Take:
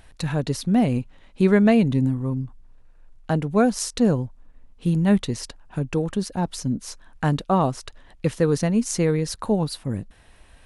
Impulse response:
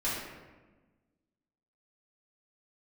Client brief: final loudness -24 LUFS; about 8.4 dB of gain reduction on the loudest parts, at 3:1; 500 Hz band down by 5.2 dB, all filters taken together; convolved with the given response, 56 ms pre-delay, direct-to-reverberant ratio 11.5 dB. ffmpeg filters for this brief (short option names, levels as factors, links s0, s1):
-filter_complex "[0:a]equalizer=f=500:t=o:g=-6.5,acompressor=threshold=0.0501:ratio=3,asplit=2[s0][s1];[1:a]atrim=start_sample=2205,adelay=56[s2];[s1][s2]afir=irnorm=-1:irlink=0,volume=0.112[s3];[s0][s3]amix=inputs=2:normalize=0,volume=2"